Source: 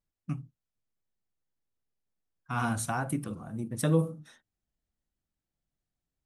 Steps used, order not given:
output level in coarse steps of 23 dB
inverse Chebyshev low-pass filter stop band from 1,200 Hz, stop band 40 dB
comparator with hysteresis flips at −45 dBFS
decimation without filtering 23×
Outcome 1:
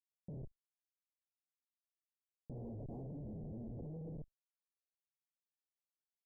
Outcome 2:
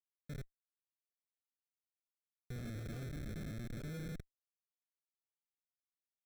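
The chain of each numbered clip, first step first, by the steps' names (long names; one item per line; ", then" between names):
decimation without filtering, then comparator with hysteresis, then inverse Chebyshev low-pass filter, then output level in coarse steps
output level in coarse steps, then comparator with hysteresis, then inverse Chebyshev low-pass filter, then decimation without filtering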